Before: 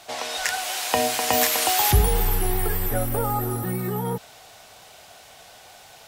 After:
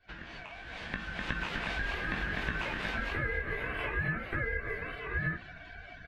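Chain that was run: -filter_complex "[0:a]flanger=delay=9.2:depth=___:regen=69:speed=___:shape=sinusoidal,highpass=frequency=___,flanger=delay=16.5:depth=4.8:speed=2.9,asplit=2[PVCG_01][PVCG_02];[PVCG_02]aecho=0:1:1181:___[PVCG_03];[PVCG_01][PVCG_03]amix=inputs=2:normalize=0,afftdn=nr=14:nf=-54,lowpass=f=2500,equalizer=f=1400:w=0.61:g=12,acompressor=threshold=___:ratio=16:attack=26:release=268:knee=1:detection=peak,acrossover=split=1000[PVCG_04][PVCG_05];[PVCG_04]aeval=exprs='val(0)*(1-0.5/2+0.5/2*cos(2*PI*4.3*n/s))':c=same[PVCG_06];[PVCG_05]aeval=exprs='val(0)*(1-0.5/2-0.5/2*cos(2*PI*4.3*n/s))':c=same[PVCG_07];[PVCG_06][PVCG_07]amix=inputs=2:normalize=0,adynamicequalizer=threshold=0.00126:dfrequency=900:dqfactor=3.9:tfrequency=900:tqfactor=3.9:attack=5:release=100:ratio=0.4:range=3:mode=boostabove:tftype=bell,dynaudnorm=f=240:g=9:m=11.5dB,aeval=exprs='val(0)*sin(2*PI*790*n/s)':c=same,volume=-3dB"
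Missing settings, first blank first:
5.1, 0.67, 640, 0.501, -37dB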